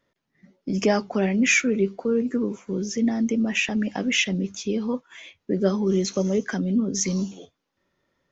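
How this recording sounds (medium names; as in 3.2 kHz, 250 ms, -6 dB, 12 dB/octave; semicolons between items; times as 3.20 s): noise floor -78 dBFS; spectral tilt -4.5 dB/octave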